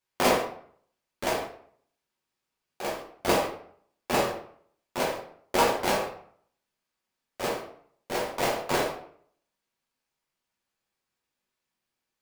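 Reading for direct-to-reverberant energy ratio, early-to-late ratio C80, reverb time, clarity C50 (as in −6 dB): −3.0 dB, 9.5 dB, 0.60 s, 5.5 dB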